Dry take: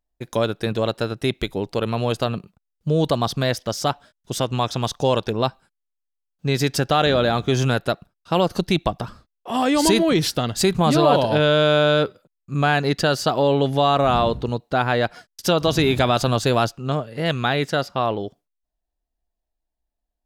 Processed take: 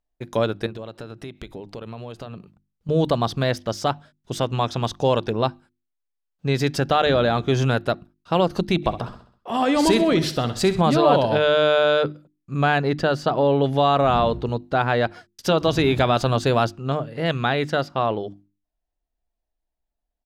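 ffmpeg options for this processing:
ffmpeg -i in.wav -filter_complex "[0:a]asettb=1/sr,asplit=3[link_01][link_02][link_03];[link_01]atrim=end=0.664[link_04];[link_02]atrim=start=0.66:end=2.89,asetpts=PTS-STARTPTS,afade=type=in:duration=0.004:curve=qsin,afade=type=out:start_time=2.226:duration=0.004:curve=qsin,acompressor=threshold=-31dB:ratio=6:attack=3.2:release=140:knee=1:detection=peak[link_05];[link_03]atrim=start=2.886[link_06];[link_04][link_05]acrossfade=duration=0.004:curve1=hsin:curve2=qsin[link_07];[link_07][link_06]acrossfade=duration=0.004:curve1=qsin:curve2=hsin,asplit=3[link_08][link_09][link_10];[link_08]afade=type=out:start_time=8.82:duration=0.02[link_11];[link_09]aecho=1:1:65|130|195|260|325:0.224|0.107|0.0516|0.0248|0.0119,afade=type=in:start_time=8.82:duration=0.02,afade=type=out:start_time=10.8:duration=0.02[link_12];[link_10]afade=type=in:start_time=10.8:duration=0.02[link_13];[link_11][link_12][link_13]amix=inputs=3:normalize=0,asettb=1/sr,asplit=3[link_14][link_15][link_16];[link_14]atrim=end=12.784[link_17];[link_15]atrim=start=12.78:end=13.64,asetpts=PTS-STARTPTS,afade=type=in:duration=0.004:curve=qsin,afade=type=out:start_time=0.856:duration=0.004:curve=qsin,highshelf=frequency=3000:gain=-7.5[link_18];[link_16]atrim=start=13.636[link_19];[link_17][link_18]acrossfade=duration=0.004:curve1=hsin:curve2=qsin[link_20];[link_20][link_19]acrossfade=duration=0.004:curve1=qsin:curve2=hsin,highshelf=frequency=5600:gain=-10.5,bandreject=frequency=50:width_type=h:width=6,bandreject=frequency=100:width_type=h:width=6,bandreject=frequency=150:width_type=h:width=6,bandreject=frequency=200:width_type=h:width=6,bandreject=frequency=250:width_type=h:width=6,bandreject=frequency=300:width_type=h:width=6,bandreject=frequency=350:width_type=h:width=6" out.wav

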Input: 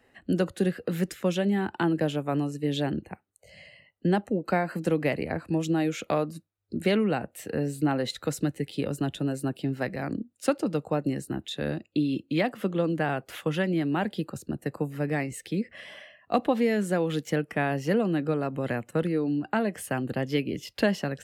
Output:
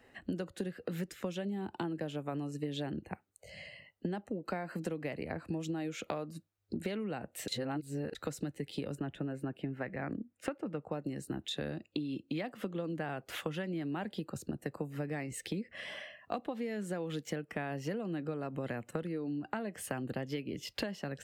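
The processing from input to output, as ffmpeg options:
ffmpeg -i in.wav -filter_complex "[0:a]asettb=1/sr,asplit=3[link_01][link_02][link_03];[link_01]atrim=end=1.454[link_04];[link_02]atrim=start=1.45:end=1.85,asetpts=PTS-STARTPTS,afade=type=in:duration=0.004:curve=qsin,afade=type=out:start_time=0.396:duration=0.004:curve=qsin,equalizer=frequency=1700:width_type=o:width=1.2:gain=-9.5[link_05];[link_03]atrim=start=1.846[link_06];[link_04][link_05]acrossfade=duration=0.004:curve1=hsin:curve2=qsin[link_07];[link_07][link_06]acrossfade=duration=0.004:curve1=qsin:curve2=hsin,asettb=1/sr,asplit=3[link_08][link_09][link_10];[link_08]atrim=end=8.954[link_11];[link_09]atrim=start=8.95:end=10.92,asetpts=PTS-STARTPTS,afade=type=in:duration=0.004:curve=qsin,afade=type=out:start_time=1.966:duration=0.004:curve=qsin,highshelf=frequency=3100:width_type=q:width=1.5:gain=-12[link_12];[link_10]atrim=start=10.916[link_13];[link_11][link_12]acrossfade=duration=0.004:curve1=hsin:curve2=qsin[link_14];[link_14][link_13]acrossfade=duration=0.004:curve1=qsin:curve2=hsin,asplit=3[link_15][link_16][link_17];[link_15]atrim=end=7.482[link_18];[link_16]atrim=start=7.478:end=8.152,asetpts=PTS-STARTPTS,areverse[link_19];[link_17]atrim=start=8.148[link_20];[link_18][link_19]acrossfade=duration=0.004:curve1=hsin:curve2=hsin[link_21];[link_21][link_20]acrossfade=duration=0.004:curve1=hsin:curve2=hsin,equalizer=frequency=11000:width_type=o:width=0.29:gain=-5,acompressor=threshold=-35dB:ratio=10,volume=1dB" out.wav

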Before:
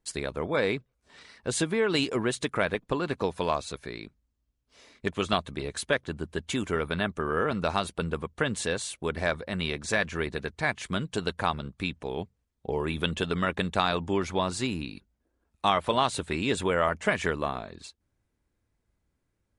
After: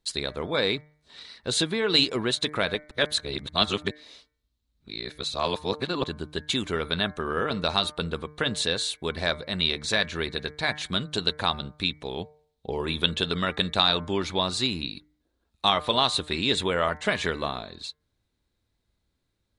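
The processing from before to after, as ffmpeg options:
ffmpeg -i in.wav -filter_complex "[0:a]asplit=3[link_01][link_02][link_03];[link_01]atrim=end=2.912[link_04];[link_02]atrim=start=2.908:end=6.042,asetpts=PTS-STARTPTS,areverse[link_05];[link_03]atrim=start=6.038[link_06];[link_04][link_05]acrossfade=duration=0.004:curve1=hsin:curve2=hsin[link_07];[link_07][link_06]acrossfade=duration=0.004:curve1=hsin:curve2=hsin,equalizer=frequency=3900:width=2.6:gain=13.5,bandreject=frequency=150.8:width_type=h:width=4,bandreject=frequency=301.6:width_type=h:width=4,bandreject=frequency=452.4:width_type=h:width=4,bandreject=frequency=603.2:width_type=h:width=4,bandreject=frequency=754:width_type=h:width=4,bandreject=frequency=904.8:width_type=h:width=4,bandreject=frequency=1055.6:width_type=h:width=4,bandreject=frequency=1206.4:width_type=h:width=4,bandreject=frequency=1357.2:width_type=h:width=4,bandreject=frequency=1508:width_type=h:width=4,bandreject=frequency=1658.8:width_type=h:width=4,bandreject=frequency=1809.6:width_type=h:width=4,bandreject=frequency=1960.4:width_type=h:width=4,bandreject=frequency=2111.2:width_type=h:width=4,bandreject=frequency=2262:width_type=h:width=4" out.wav

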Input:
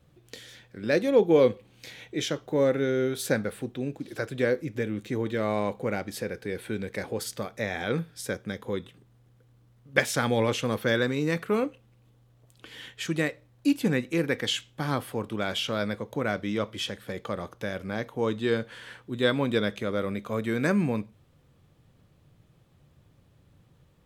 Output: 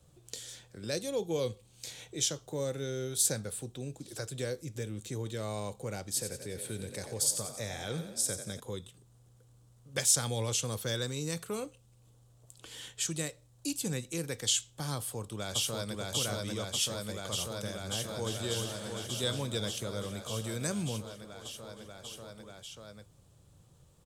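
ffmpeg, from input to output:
ffmpeg -i in.wav -filter_complex "[0:a]asettb=1/sr,asplit=3[link_01][link_02][link_03];[link_01]atrim=end=6.044[link_04];[link_02]atrim=start=6.04:end=8.6,asetpts=PTS-STARTPTS,afade=type=in:duration=0.004:curve=qsin,afade=type=out:start_time=2.556:duration=0.004:curve=qsin,asplit=7[link_05][link_06][link_07][link_08][link_09][link_10][link_11];[link_06]adelay=90,afreqshift=33,volume=-9dB[link_12];[link_07]adelay=180,afreqshift=66,volume=-15dB[link_13];[link_08]adelay=270,afreqshift=99,volume=-21dB[link_14];[link_09]adelay=360,afreqshift=132,volume=-27.1dB[link_15];[link_10]adelay=450,afreqshift=165,volume=-33.1dB[link_16];[link_11]adelay=540,afreqshift=198,volume=-39.1dB[link_17];[link_05][link_12][link_13][link_14][link_15][link_16][link_17]amix=inputs=7:normalize=0,atrim=end_sample=112896[link_18];[link_03]atrim=start=8.596[link_19];[link_04][link_18]acrossfade=duration=0.004:curve1=hsin:curve2=qsin[link_20];[link_20][link_19]acrossfade=duration=0.004:curve1=qsin:curve2=hsin,asplit=2[link_21][link_22];[link_22]afade=type=in:start_time=14.96:duration=0.01,afade=type=out:start_time=15.97:duration=0.01,aecho=0:1:590|1180|1770|2360|2950|3540|4130|4720|5310|5900|6490|7080:0.891251|0.757563|0.643929|0.547339|0.465239|0.395453|0.336135|0.285715|0.242857|0.206429|0.175464|0.149145[link_23];[link_21][link_23]amix=inputs=2:normalize=0,asplit=2[link_24][link_25];[link_25]afade=type=in:start_time=17.68:duration=0.01,afade=type=out:start_time=18.35:duration=0.01,aecho=0:1:350|700|1050|1400|1750|2100|2450|2800|3150|3500|3850|4200:0.530884|0.424708|0.339766|0.271813|0.21745|0.17396|0.139168|0.111335|0.0890676|0.0712541|0.0570033|0.0456026[link_26];[link_24][link_26]amix=inputs=2:normalize=0,equalizer=frequency=250:width_type=o:width=1:gain=-6,equalizer=frequency=2000:width_type=o:width=1:gain=-8,equalizer=frequency=8000:width_type=o:width=1:gain=12,acrossover=split=140|3000[link_27][link_28][link_29];[link_28]acompressor=threshold=-52dB:ratio=1.5[link_30];[link_27][link_30][link_29]amix=inputs=3:normalize=0" out.wav

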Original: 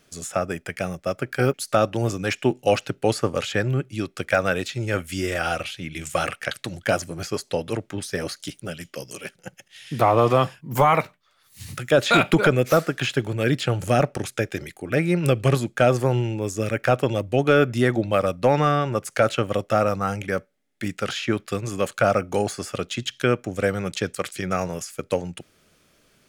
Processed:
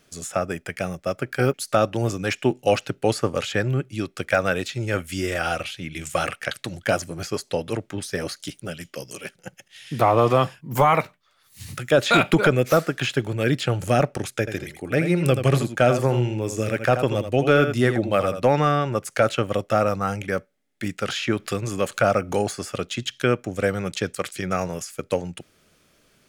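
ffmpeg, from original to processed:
ffmpeg -i in.wav -filter_complex "[0:a]asettb=1/sr,asplit=3[link_01][link_02][link_03];[link_01]atrim=end=14.394[link_04];[link_02]atrim=start=14.39:end=18.5,asetpts=PTS-STARTPTS,afade=type=in:duration=0.004:curve=qsin,afade=type=out:start_time=4.106:duration=0.004:curve=qsin,aecho=1:1:82:0.355,atrim=end_sample=181251[link_05];[link_03]atrim=start=18.496[link_06];[link_04][link_05]acrossfade=duration=0.004:curve1=hsin:curve2=qsin[link_07];[link_07][link_06]acrossfade=duration=0.004:curve1=qsin:curve2=hsin,asplit=3[link_08][link_09][link_10];[link_08]afade=type=out:start_time=21.08:duration=0.02[link_11];[link_09]acompressor=mode=upward:threshold=-22dB:ratio=2.5:attack=3.2:release=140:knee=2.83:detection=peak,afade=type=in:start_time=21.08:duration=0.02,afade=type=out:start_time=22.5:duration=0.02[link_12];[link_10]afade=type=in:start_time=22.5:duration=0.02[link_13];[link_11][link_12][link_13]amix=inputs=3:normalize=0" out.wav

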